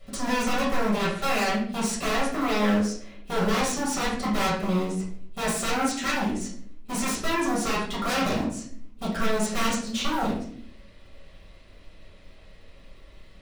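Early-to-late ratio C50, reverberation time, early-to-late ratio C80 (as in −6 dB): 3.5 dB, 0.55 s, 8.5 dB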